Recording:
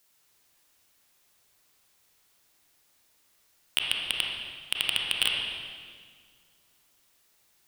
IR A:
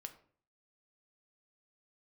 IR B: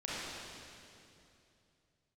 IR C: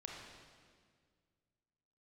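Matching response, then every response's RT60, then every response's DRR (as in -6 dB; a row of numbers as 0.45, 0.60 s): C; 0.50, 2.7, 1.9 s; 6.5, -8.5, -1.5 dB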